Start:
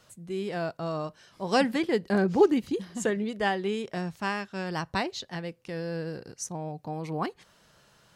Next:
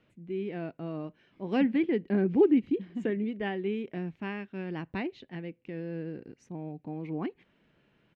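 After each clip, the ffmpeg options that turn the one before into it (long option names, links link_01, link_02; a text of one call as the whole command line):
ffmpeg -i in.wav -af "firequalizer=gain_entry='entry(110,0);entry(280,10);entry(540,-2);entry(1200,-7);entry(2300,4);entry(4700,-18);entry(9000,-29)':delay=0.05:min_phase=1,volume=-6.5dB" out.wav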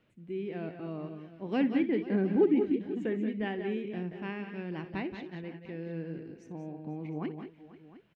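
ffmpeg -i in.wav -af "aecho=1:1:61|178|197|490|708:0.168|0.335|0.266|0.126|0.126,volume=-2.5dB" out.wav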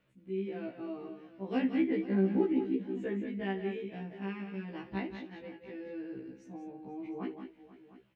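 ffmpeg -i in.wav -af "afftfilt=real='re*1.73*eq(mod(b,3),0)':imag='im*1.73*eq(mod(b,3),0)':win_size=2048:overlap=0.75" out.wav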